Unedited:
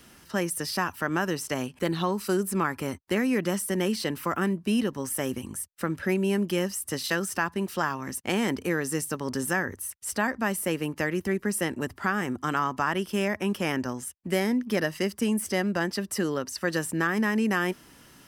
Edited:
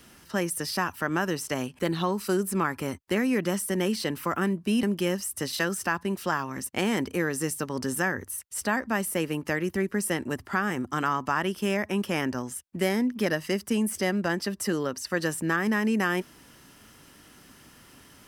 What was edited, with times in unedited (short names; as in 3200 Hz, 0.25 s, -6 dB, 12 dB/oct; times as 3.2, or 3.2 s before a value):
4.83–6.34 cut